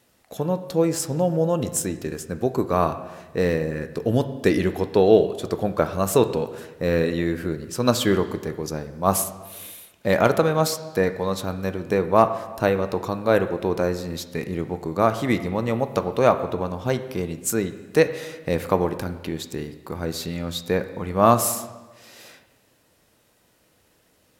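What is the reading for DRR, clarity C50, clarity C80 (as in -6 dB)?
9.0 dB, 12.0 dB, 13.5 dB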